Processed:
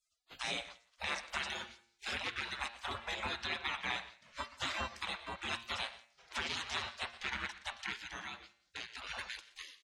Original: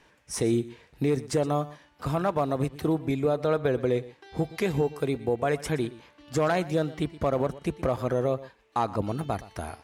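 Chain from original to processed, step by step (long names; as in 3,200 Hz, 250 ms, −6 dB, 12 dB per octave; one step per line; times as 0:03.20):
high-pass filter 71 Hz 24 dB per octave
gate on every frequency bin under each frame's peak −30 dB weak
hum removal 116.2 Hz, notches 40
in parallel at +2 dB: brickwall limiter −37 dBFS, peak gain reduction 9.5 dB
0:07.93–0:08.94: on the sum: downward compressor 1.5 to 1, threshold −53 dBFS, peak gain reduction 5.5 dB
high-frequency loss of the air 130 metres
single-tap delay 172 ms −24 dB
level +6 dB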